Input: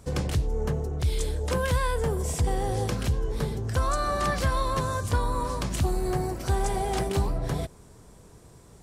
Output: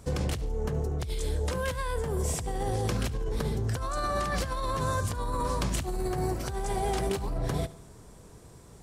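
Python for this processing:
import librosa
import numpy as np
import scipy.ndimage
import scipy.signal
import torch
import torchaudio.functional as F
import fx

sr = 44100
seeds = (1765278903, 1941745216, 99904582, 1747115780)

y = fx.over_compress(x, sr, threshold_db=-28.0, ratio=-1.0)
y = fx.echo_feedback(y, sr, ms=72, feedback_pct=52, wet_db=-19)
y = y * 10.0 ** (-1.5 / 20.0)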